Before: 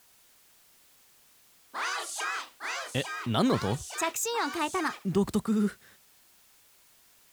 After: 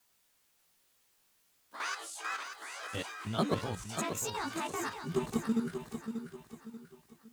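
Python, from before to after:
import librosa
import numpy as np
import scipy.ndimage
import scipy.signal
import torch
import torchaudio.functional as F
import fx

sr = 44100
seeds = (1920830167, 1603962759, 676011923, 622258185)

y = fx.frame_reverse(x, sr, frame_ms=36.0)
y = fx.level_steps(y, sr, step_db=9)
y = fx.echo_feedback(y, sr, ms=587, feedback_pct=38, wet_db=-8.0)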